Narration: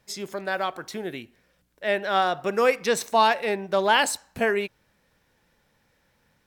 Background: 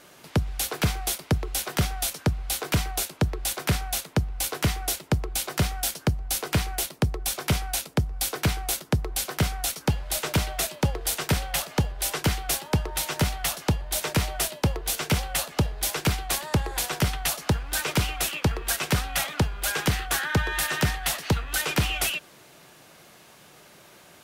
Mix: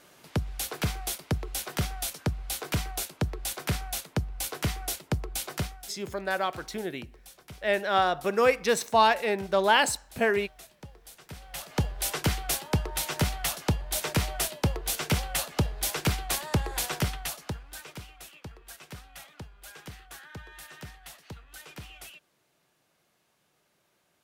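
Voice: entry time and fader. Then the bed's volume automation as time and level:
5.80 s, -1.5 dB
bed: 5.55 s -5 dB
5.98 s -22.5 dB
11.26 s -22.5 dB
11.82 s -2.5 dB
16.93 s -2.5 dB
18.06 s -20 dB

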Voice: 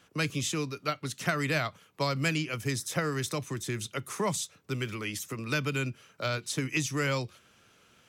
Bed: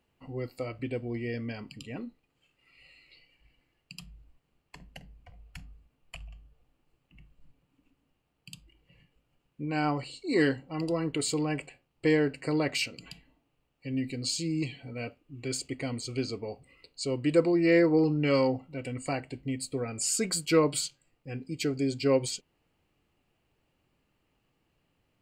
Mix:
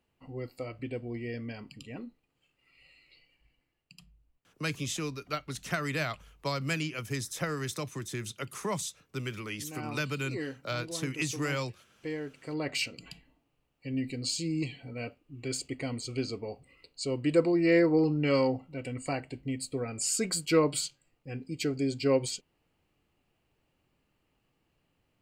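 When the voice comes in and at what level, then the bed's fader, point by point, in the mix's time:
4.45 s, -3.0 dB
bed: 3.32 s -3 dB
4.22 s -12 dB
12.37 s -12 dB
12.79 s -1 dB

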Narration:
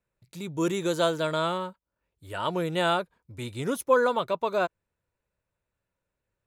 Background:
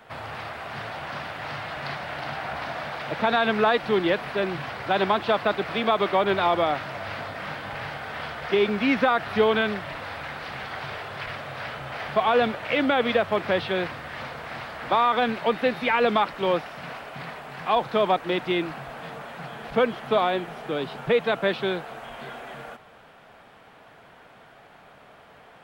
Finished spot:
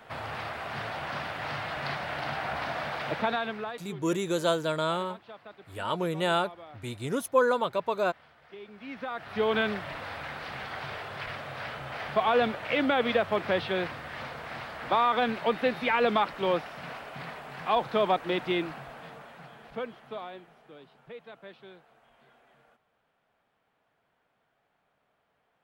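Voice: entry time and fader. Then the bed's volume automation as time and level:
3.45 s, -1.5 dB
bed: 3.1 s -1 dB
3.99 s -24.5 dB
8.67 s -24.5 dB
9.58 s -3.5 dB
18.56 s -3.5 dB
20.91 s -23.5 dB

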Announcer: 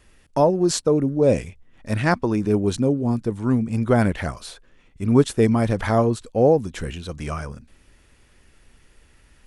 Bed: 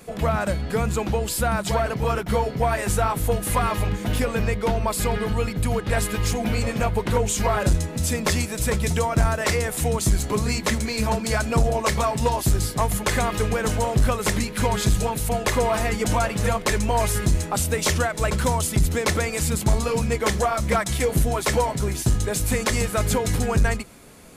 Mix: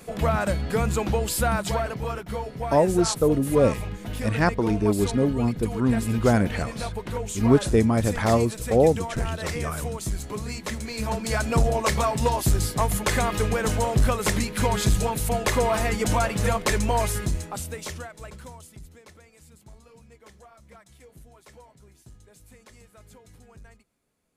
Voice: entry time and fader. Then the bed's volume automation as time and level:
2.35 s, -2.0 dB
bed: 1.51 s -0.5 dB
2.27 s -9 dB
10.67 s -9 dB
11.49 s -1 dB
16.91 s -1 dB
19.14 s -29 dB

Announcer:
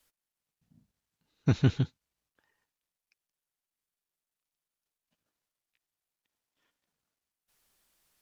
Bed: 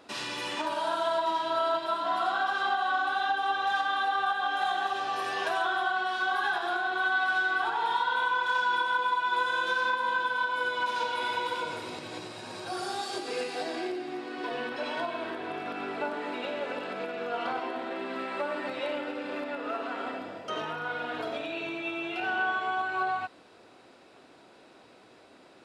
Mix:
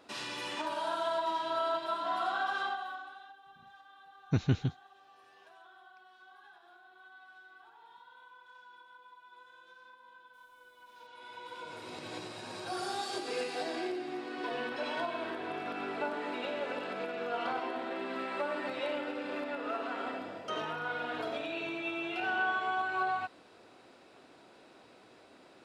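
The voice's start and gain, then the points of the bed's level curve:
2.85 s, -4.0 dB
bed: 2.6 s -4.5 dB
3.41 s -28.5 dB
10.78 s -28.5 dB
12.08 s -2.5 dB

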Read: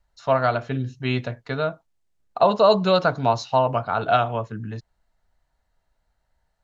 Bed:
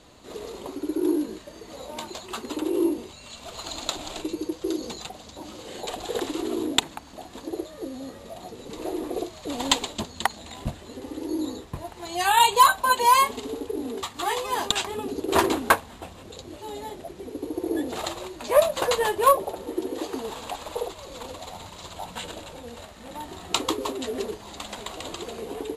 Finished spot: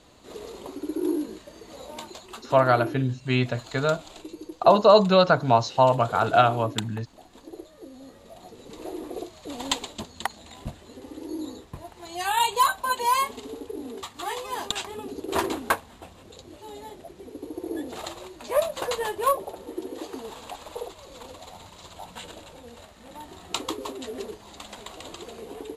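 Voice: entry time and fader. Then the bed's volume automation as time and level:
2.25 s, +1.0 dB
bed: 1.92 s -2.5 dB
2.56 s -9.5 dB
7.84 s -9.5 dB
8.61 s -5 dB

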